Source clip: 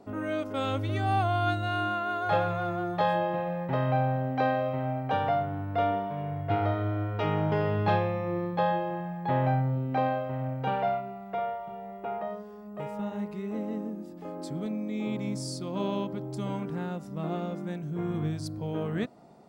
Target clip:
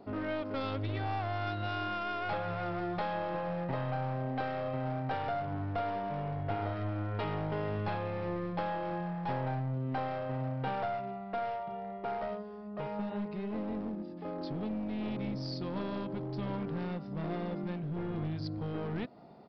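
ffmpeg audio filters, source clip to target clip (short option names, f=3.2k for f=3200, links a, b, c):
-af "acompressor=threshold=-30dB:ratio=5,aresample=11025,aeval=exprs='clip(val(0),-1,0.0188)':c=same,aresample=44100"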